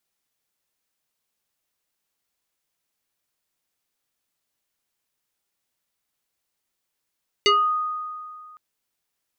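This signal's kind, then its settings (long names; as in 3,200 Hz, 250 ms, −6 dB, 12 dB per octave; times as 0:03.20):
two-operator FM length 1.11 s, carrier 1,240 Hz, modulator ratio 1.33, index 2.5, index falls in 0.30 s exponential, decay 2.17 s, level −13 dB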